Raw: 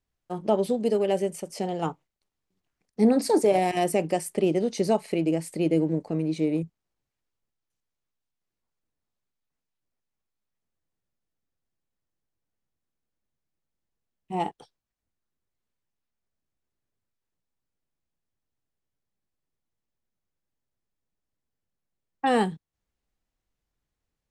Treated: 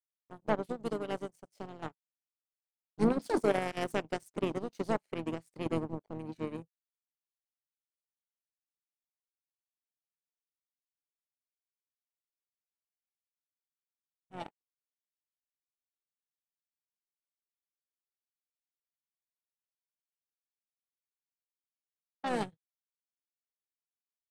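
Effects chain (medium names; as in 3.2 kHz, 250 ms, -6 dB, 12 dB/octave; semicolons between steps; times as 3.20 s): gate -42 dBFS, range -35 dB; power-law waveshaper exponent 2; harmony voices -7 st -15 dB, -5 st -10 dB; trim -4 dB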